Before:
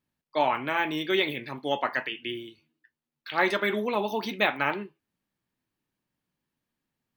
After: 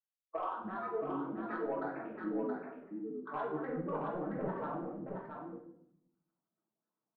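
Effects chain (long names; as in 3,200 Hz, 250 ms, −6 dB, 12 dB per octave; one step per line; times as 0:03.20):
camcorder AGC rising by 24 dB per second
noise gate −49 dBFS, range −25 dB
Butterworth high-pass 200 Hz 36 dB per octave
noise reduction from a noise print of the clip's start 8 dB
Butterworth low-pass 1,100 Hz 48 dB per octave
parametric band 310 Hz −10 dB 1.7 octaves
downward compressor 4 to 1, threshold −38 dBFS, peak gain reduction 13 dB
multi-voice chorus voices 2, 0.94 Hz, delay 22 ms, depth 3 ms
soft clipping −32 dBFS, distortion −24 dB
granular cloud, spray 16 ms, pitch spread up and down by 7 semitones
single-tap delay 673 ms −5 dB
convolution reverb RT60 0.70 s, pre-delay 5 ms, DRR −2 dB
level +3.5 dB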